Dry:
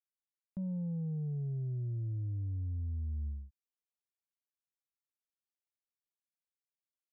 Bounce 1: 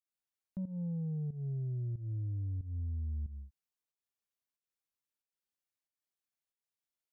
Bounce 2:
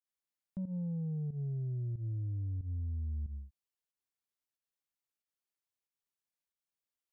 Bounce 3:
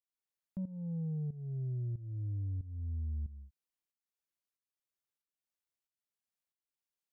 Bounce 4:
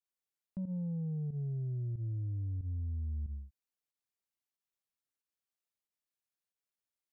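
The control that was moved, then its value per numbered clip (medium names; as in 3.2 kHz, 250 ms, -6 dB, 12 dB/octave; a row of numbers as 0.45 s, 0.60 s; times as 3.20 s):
volume shaper, release: 224 ms, 122 ms, 441 ms, 80 ms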